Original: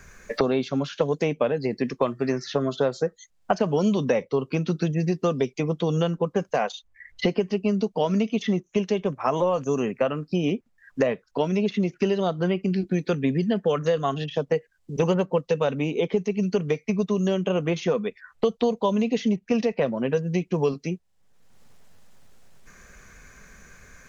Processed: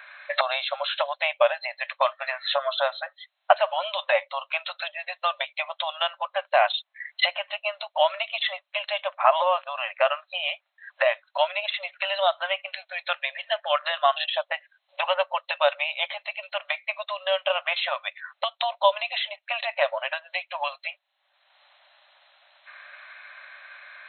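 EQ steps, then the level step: brick-wall FIR band-pass 550–4200 Hz; treble shelf 2.5 kHz +9.5 dB; +5.0 dB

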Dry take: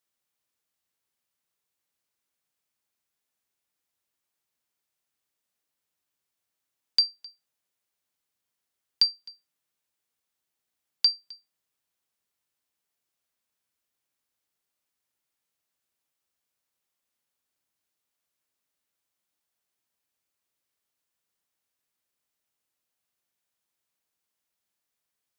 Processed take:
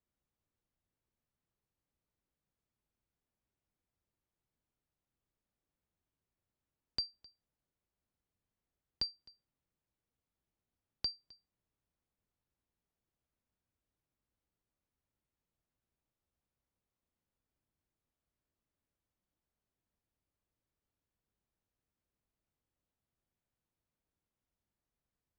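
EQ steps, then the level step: tilt EQ -4.5 dB/octave; -5.0 dB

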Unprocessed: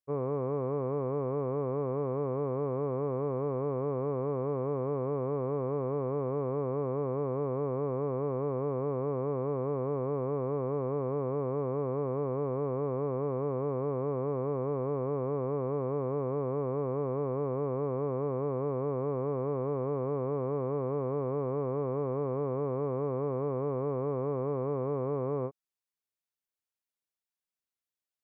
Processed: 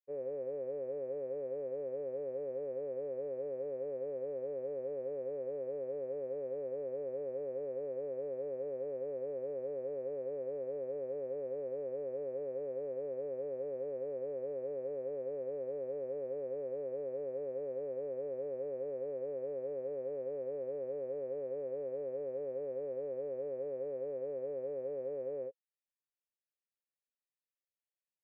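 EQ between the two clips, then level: vowel filter e; band-stop 500 Hz, Q 13; +2.5 dB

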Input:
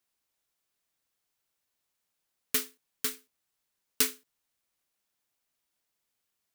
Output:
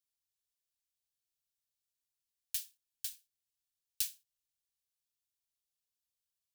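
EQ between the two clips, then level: Chebyshev band-stop 130–1700 Hz, order 4; peaking EQ 730 Hz -11.5 dB 2.4 oct; peaking EQ 2 kHz -13 dB 0.35 oct; -7.0 dB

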